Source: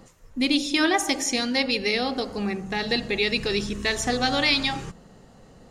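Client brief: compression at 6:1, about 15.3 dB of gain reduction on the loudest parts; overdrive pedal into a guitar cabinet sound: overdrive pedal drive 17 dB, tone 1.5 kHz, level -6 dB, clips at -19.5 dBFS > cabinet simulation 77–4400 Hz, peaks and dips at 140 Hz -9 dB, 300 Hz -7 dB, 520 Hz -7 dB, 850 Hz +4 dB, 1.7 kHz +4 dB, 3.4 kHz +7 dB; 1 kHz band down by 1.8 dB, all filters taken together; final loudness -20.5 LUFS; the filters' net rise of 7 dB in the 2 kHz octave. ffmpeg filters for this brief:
-filter_complex "[0:a]equalizer=f=1000:t=o:g=-7,equalizer=f=2000:t=o:g=7.5,acompressor=threshold=0.0224:ratio=6,asplit=2[s0][s1];[s1]highpass=f=720:p=1,volume=7.08,asoftclip=type=tanh:threshold=0.106[s2];[s0][s2]amix=inputs=2:normalize=0,lowpass=f=1500:p=1,volume=0.501,highpass=77,equalizer=f=140:t=q:w=4:g=-9,equalizer=f=300:t=q:w=4:g=-7,equalizer=f=520:t=q:w=4:g=-7,equalizer=f=850:t=q:w=4:g=4,equalizer=f=1700:t=q:w=4:g=4,equalizer=f=3400:t=q:w=4:g=7,lowpass=f=4400:w=0.5412,lowpass=f=4400:w=1.3066,volume=3.55"

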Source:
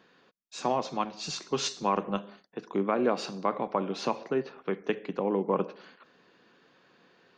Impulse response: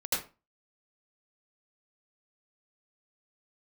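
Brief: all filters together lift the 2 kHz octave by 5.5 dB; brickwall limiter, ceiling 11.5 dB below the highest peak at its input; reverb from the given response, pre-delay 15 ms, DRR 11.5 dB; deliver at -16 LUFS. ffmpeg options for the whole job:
-filter_complex "[0:a]equalizer=f=2000:t=o:g=7.5,alimiter=limit=0.075:level=0:latency=1,asplit=2[s0][s1];[1:a]atrim=start_sample=2205,adelay=15[s2];[s1][s2]afir=irnorm=-1:irlink=0,volume=0.119[s3];[s0][s3]amix=inputs=2:normalize=0,volume=8.91"

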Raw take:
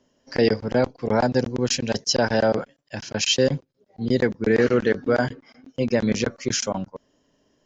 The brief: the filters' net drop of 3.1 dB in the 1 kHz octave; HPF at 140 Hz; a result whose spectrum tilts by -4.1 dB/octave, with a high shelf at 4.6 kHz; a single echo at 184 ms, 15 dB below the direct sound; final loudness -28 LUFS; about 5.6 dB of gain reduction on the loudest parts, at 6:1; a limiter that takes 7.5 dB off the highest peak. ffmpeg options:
-af "highpass=140,equalizer=f=1000:t=o:g=-4.5,highshelf=f=4600:g=-3.5,acompressor=threshold=0.0891:ratio=6,alimiter=limit=0.126:level=0:latency=1,aecho=1:1:184:0.178,volume=1.26"

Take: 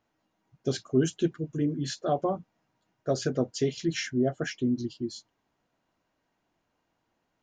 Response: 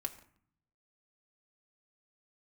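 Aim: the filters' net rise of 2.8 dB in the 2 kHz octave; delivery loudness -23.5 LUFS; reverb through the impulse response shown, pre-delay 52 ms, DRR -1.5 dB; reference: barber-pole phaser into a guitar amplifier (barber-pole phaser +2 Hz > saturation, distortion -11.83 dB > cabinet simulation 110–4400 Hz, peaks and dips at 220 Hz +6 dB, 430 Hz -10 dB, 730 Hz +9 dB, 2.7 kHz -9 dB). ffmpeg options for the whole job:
-filter_complex "[0:a]equalizer=f=2000:t=o:g=5,asplit=2[s0][s1];[1:a]atrim=start_sample=2205,adelay=52[s2];[s1][s2]afir=irnorm=-1:irlink=0,volume=1.26[s3];[s0][s3]amix=inputs=2:normalize=0,asplit=2[s4][s5];[s5]afreqshift=2[s6];[s4][s6]amix=inputs=2:normalize=1,asoftclip=threshold=0.0631,highpass=110,equalizer=f=220:t=q:w=4:g=6,equalizer=f=430:t=q:w=4:g=-10,equalizer=f=730:t=q:w=4:g=9,equalizer=f=2700:t=q:w=4:g=-9,lowpass=f=4400:w=0.5412,lowpass=f=4400:w=1.3066,volume=2.51"

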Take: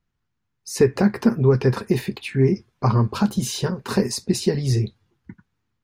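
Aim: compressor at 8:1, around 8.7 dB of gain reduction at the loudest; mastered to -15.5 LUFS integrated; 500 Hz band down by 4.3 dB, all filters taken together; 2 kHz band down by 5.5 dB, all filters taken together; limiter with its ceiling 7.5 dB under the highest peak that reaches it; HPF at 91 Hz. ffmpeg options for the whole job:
-af "highpass=91,equalizer=f=500:t=o:g=-5.5,equalizer=f=2000:t=o:g=-7,acompressor=threshold=0.0708:ratio=8,volume=5.96,alimiter=limit=0.596:level=0:latency=1"

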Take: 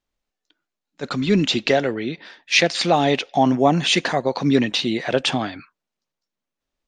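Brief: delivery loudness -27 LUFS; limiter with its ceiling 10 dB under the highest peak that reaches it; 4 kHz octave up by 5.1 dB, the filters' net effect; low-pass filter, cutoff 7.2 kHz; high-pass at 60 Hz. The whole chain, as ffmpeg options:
-af "highpass=60,lowpass=7200,equalizer=f=4000:t=o:g=6.5,volume=0.501,alimiter=limit=0.168:level=0:latency=1"

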